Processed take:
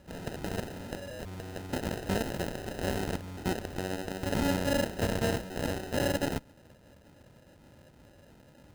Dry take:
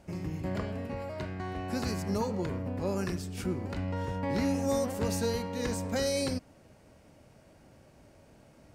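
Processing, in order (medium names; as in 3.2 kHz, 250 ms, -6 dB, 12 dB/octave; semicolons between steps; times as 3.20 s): FFT band-reject 640–2800 Hz; sample-and-hold 39×; Chebyshev shaper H 7 -10 dB, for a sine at -20.5 dBFS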